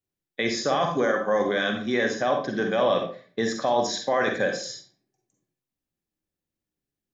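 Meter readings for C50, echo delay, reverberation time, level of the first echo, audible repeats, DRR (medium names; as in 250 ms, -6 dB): 5.0 dB, no echo, 0.45 s, no echo, no echo, 3.0 dB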